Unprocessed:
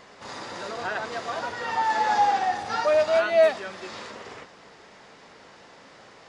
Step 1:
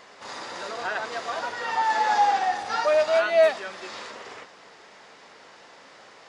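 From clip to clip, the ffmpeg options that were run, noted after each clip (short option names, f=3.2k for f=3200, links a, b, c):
-af "lowshelf=f=240:g=-12,volume=1.5dB"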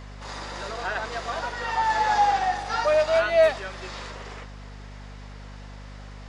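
-af "aeval=exprs='val(0)+0.01*(sin(2*PI*50*n/s)+sin(2*PI*2*50*n/s)/2+sin(2*PI*3*50*n/s)/3+sin(2*PI*4*50*n/s)/4+sin(2*PI*5*50*n/s)/5)':c=same"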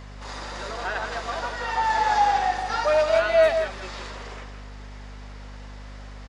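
-filter_complex "[0:a]asplit=2[a][b];[b]adelay=163.3,volume=-7dB,highshelf=f=4k:g=-3.67[c];[a][c]amix=inputs=2:normalize=0"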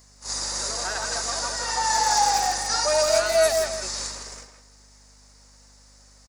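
-filter_complex "[0:a]agate=range=-13dB:threshold=-36dB:ratio=16:detection=peak,asplit=2[a][b];[b]adelay=160,highpass=300,lowpass=3.4k,asoftclip=type=hard:threshold=-17.5dB,volume=-7dB[c];[a][c]amix=inputs=2:normalize=0,aexciter=amount=13.6:drive=5.1:freq=4.8k,volume=-2.5dB"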